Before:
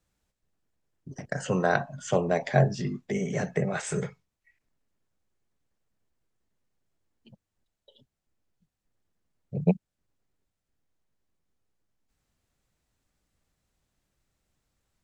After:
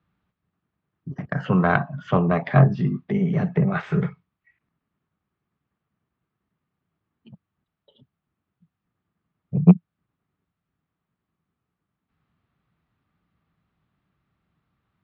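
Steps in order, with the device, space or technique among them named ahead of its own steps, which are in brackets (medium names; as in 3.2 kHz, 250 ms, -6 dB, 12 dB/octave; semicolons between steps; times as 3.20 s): guitar amplifier (valve stage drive 10 dB, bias 0.55; tone controls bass +5 dB, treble -11 dB; cabinet simulation 93–4000 Hz, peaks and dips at 170 Hz +5 dB, 530 Hz -6 dB, 1.2 kHz +8 dB); 2.67–3.72 s: dynamic bell 1.6 kHz, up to -6 dB, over -50 dBFS, Q 1.1; trim +6 dB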